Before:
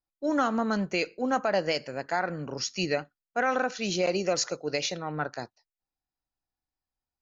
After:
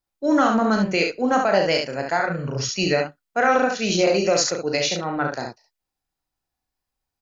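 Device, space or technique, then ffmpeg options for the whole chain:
slapback doubling: -filter_complex "[0:a]asplit=3[link_01][link_02][link_03];[link_02]adelay=36,volume=-6dB[link_04];[link_03]adelay=69,volume=-5dB[link_05];[link_01][link_04][link_05]amix=inputs=3:normalize=0,asettb=1/sr,asplit=3[link_06][link_07][link_08];[link_06]atrim=end=2.174[link_09];[link_07]atrim=start=2.17:end=2.69,asetpts=PTS-STARTPTS,afade=type=in:duration=0.004:curve=qsin,afade=type=out:start_time=0.516:duration=0.004:curve=qsin,equalizer=frequency=125:width_type=o:width=0.33:gain=10,equalizer=frequency=315:width_type=o:width=0.33:gain=-9,equalizer=frequency=800:width_type=o:width=0.33:gain=-7,equalizer=frequency=5000:width_type=o:width=0.33:gain=-6[link_10];[link_08]atrim=start=2.686[link_11];[link_09][link_10]acrossfade=duration=0.004:curve1=hsin:curve2=qsin[link_12];[link_12][link_11]acrossfade=duration=0.004:curve1=qsin:curve2=hsin,volume=6dB"

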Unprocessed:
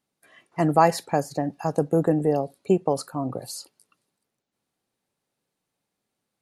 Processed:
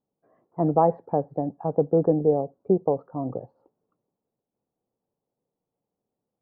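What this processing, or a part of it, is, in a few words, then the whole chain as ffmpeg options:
under water: -af "lowpass=frequency=930:width=0.5412,lowpass=frequency=930:width=1.3066,equalizer=frequency=470:width_type=o:width=0.28:gain=5,volume=-1.5dB"

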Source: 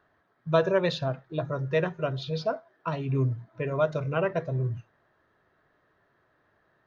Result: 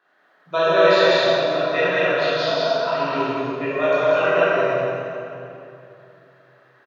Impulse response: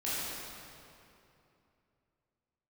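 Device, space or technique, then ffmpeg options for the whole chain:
stadium PA: -filter_complex "[0:a]highpass=140,equalizer=frequency=3000:width_type=o:width=2.9:gain=6.5,aecho=1:1:183.7|230.3:0.891|0.282[link_01];[1:a]atrim=start_sample=2205[link_02];[link_01][link_02]afir=irnorm=-1:irlink=0,highpass=290"

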